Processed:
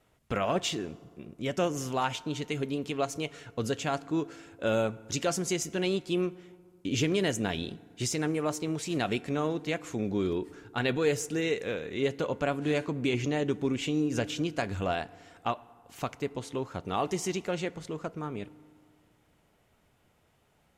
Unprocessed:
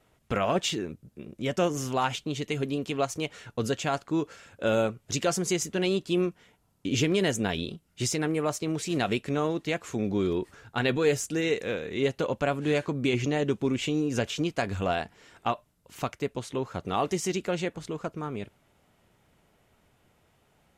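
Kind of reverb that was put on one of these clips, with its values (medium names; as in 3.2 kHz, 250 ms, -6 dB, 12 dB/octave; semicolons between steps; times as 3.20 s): FDN reverb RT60 2 s, high-frequency decay 0.5×, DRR 18.5 dB; trim -2.5 dB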